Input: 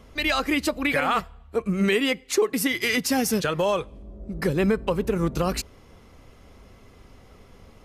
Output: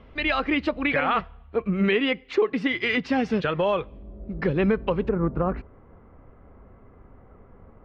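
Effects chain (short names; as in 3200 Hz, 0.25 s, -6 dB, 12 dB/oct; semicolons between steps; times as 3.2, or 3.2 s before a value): LPF 3300 Hz 24 dB/oct, from 5.09 s 1600 Hz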